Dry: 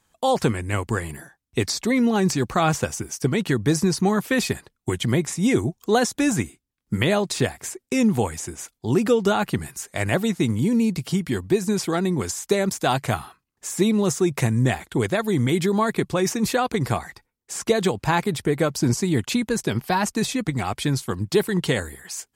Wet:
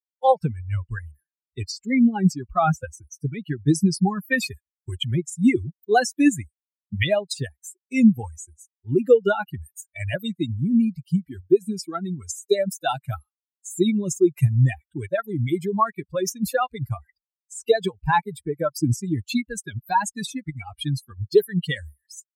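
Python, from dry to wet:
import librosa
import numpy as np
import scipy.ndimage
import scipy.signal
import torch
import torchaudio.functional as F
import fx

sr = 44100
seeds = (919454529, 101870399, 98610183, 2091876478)

y = fx.bin_expand(x, sr, power=3.0)
y = fx.high_shelf(y, sr, hz=2300.0, db=fx.steps((0.0, -11.0), (3.66, -3.0)))
y = y * 10.0 ** (8.0 / 20.0)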